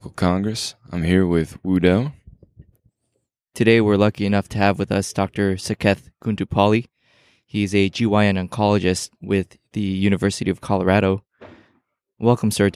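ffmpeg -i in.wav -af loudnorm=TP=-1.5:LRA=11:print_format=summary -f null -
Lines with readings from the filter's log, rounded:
Input Integrated:    -20.0 LUFS
Input True Peak:      -2.0 dBTP
Input LRA:             1.7 LU
Input Threshold:     -30.8 LUFS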